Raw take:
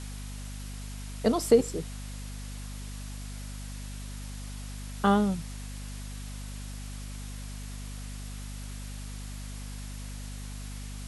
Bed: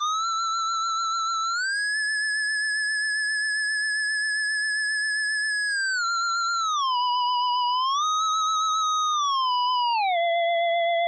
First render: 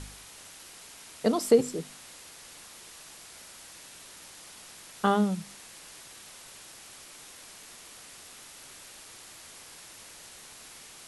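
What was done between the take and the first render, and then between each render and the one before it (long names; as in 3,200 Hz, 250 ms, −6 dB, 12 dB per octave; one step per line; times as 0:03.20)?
hum removal 50 Hz, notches 5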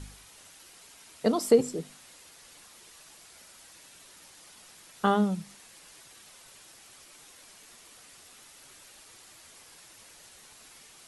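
broadband denoise 6 dB, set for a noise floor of −49 dBFS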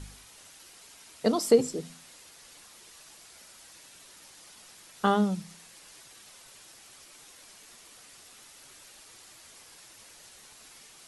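dynamic equaliser 5,300 Hz, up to +4 dB, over −55 dBFS, Q 1.2
hum removal 84.03 Hz, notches 3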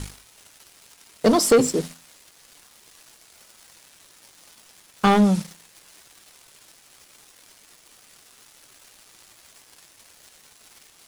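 leveller curve on the samples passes 3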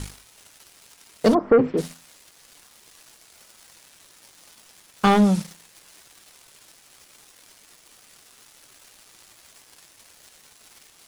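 0:01.33–0:01.77: low-pass filter 1,200 Hz → 2,800 Hz 24 dB per octave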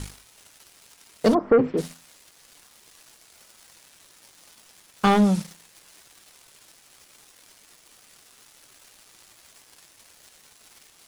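level −1.5 dB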